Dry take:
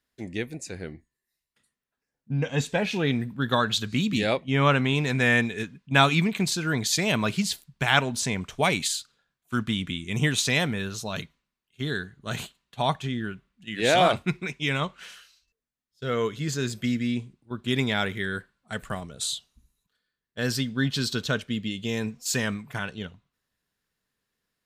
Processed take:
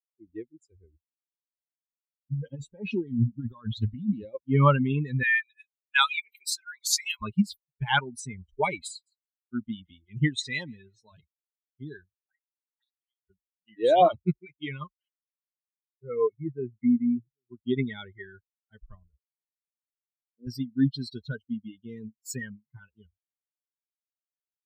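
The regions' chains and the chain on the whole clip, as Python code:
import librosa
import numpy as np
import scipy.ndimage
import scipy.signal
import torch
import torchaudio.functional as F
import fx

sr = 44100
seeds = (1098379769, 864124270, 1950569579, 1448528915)

y = fx.chain(x, sr, fx.over_compress(threshold_db=-29.0, ratio=-1.0),
    fx.low_shelf(hz=330.0, db=3.5),
    fx.doppler_dist(depth_ms=0.15), at=(2.32, 4.35))
y = fx.chain(y, sr, fx.highpass(hz=1100.0, slope=12),
    fx.high_shelf(hz=4400.0, db=7.0), at=(5.23, 7.22))
y = fx.chain(y, sr, fx.lowpass(hz=9800.0, slope=12),
    fx.low_shelf(hz=180.0, db=-3.5),
    fx.echo_wet_highpass(ms=164, feedback_pct=30, hz=1600.0, wet_db=-11), at=(8.9, 11.12))
y = fx.chain(y, sr, fx.lower_of_two(delay_ms=0.53),
    fx.comb_fb(f0_hz=190.0, decay_s=0.16, harmonics='all', damping=0.0, mix_pct=40),
    fx.auto_wah(base_hz=290.0, top_hz=5000.0, q=3.2, full_db=-28.0, direction='up'), at=(12.15, 13.3))
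y = fx.chain(y, sr, fx.brickwall_lowpass(high_hz=2600.0),
    fx.echo_single(ms=787, db=-20.0), at=(15.08, 17.58))
y = fx.chain(y, sr, fx.bandpass_q(hz=310.0, q=1.7),
    fx.air_absorb(metres=380.0), at=(19.18, 20.47))
y = fx.bin_expand(y, sr, power=3.0)
y = fx.tilt_shelf(y, sr, db=4.0, hz=1400.0)
y = F.gain(torch.from_numpy(y), 3.5).numpy()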